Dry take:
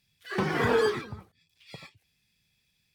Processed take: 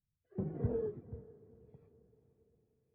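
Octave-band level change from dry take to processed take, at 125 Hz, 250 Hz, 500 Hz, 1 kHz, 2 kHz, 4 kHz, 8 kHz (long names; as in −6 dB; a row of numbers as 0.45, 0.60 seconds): −4.5 dB, −9.5 dB, −12.5 dB, −27.0 dB, below −35 dB, below −40 dB, below −30 dB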